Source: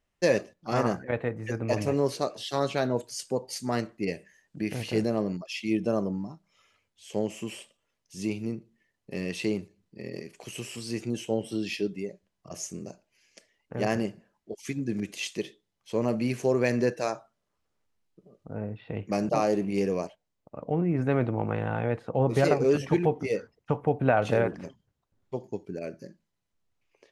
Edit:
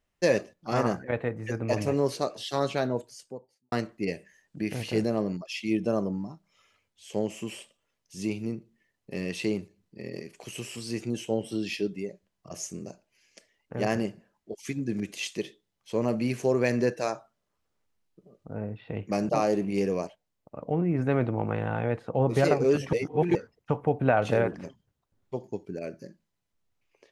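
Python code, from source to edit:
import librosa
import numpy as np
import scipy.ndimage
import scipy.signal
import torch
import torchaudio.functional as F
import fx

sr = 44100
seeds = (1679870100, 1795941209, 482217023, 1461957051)

y = fx.studio_fade_out(x, sr, start_s=2.66, length_s=1.06)
y = fx.edit(y, sr, fx.reverse_span(start_s=22.93, length_s=0.42), tone=tone)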